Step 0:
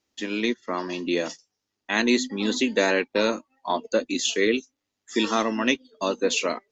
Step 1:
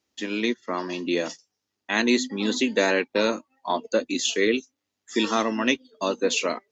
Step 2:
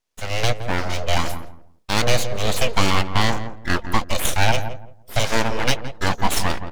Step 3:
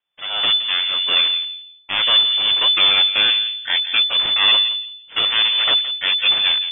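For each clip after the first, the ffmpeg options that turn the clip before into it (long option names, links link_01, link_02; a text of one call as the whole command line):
ffmpeg -i in.wav -af "highpass=51" out.wav
ffmpeg -i in.wav -filter_complex "[0:a]dynaudnorm=framelen=160:gausssize=3:maxgain=9dB,aeval=exprs='abs(val(0))':channel_layout=same,asplit=2[link_01][link_02];[link_02]adelay=169,lowpass=frequency=910:poles=1,volume=-8dB,asplit=2[link_03][link_04];[link_04]adelay=169,lowpass=frequency=910:poles=1,volume=0.25,asplit=2[link_05][link_06];[link_06]adelay=169,lowpass=frequency=910:poles=1,volume=0.25[link_07];[link_03][link_05][link_07]amix=inputs=3:normalize=0[link_08];[link_01][link_08]amix=inputs=2:normalize=0,volume=-1dB" out.wav
ffmpeg -i in.wav -af "lowpass=frequency=3000:width_type=q:width=0.5098,lowpass=frequency=3000:width_type=q:width=0.6013,lowpass=frequency=3000:width_type=q:width=0.9,lowpass=frequency=3000:width_type=q:width=2.563,afreqshift=-3500" out.wav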